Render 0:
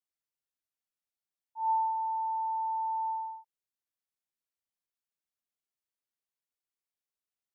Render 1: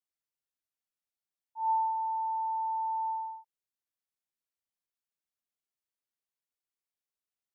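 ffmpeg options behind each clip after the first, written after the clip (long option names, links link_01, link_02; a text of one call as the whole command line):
ffmpeg -i in.wav -af anull out.wav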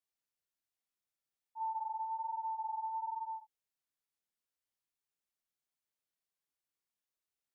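ffmpeg -i in.wav -af "flanger=delay=22.5:depth=7.1:speed=1.2,acompressor=threshold=-39dB:ratio=6,volume=2.5dB" out.wav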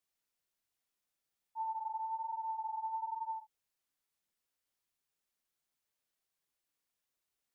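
ffmpeg -i in.wav -af "alimiter=level_in=14dB:limit=-24dB:level=0:latency=1:release=351,volume=-14dB,aphaser=in_gain=1:out_gain=1:delay=4.4:decay=0.2:speed=1.4:type=triangular,volume=4dB" out.wav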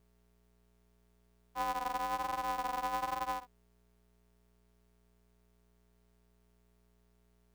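ffmpeg -i in.wav -af "aeval=exprs='val(0)+0.000282*(sin(2*PI*60*n/s)+sin(2*PI*2*60*n/s)/2+sin(2*PI*3*60*n/s)/3+sin(2*PI*4*60*n/s)/4+sin(2*PI*5*60*n/s)/5)':channel_layout=same,aeval=exprs='val(0)*sgn(sin(2*PI*120*n/s))':channel_layout=same,volume=3dB" out.wav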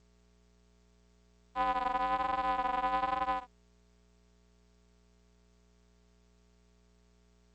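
ffmpeg -i in.wav -af "volume=4dB" -ar 16000 -c:a g722 out.g722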